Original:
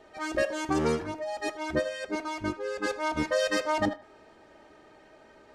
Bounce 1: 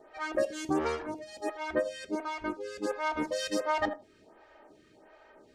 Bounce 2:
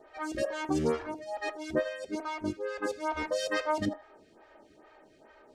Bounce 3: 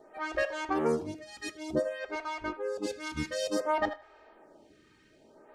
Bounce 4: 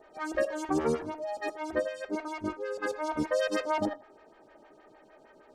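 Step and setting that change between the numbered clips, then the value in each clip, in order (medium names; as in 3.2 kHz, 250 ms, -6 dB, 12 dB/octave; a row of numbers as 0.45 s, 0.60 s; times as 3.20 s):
lamp-driven phase shifter, rate: 1.4 Hz, 2.3 Hz, 0.56 Hz, 6.5 Hz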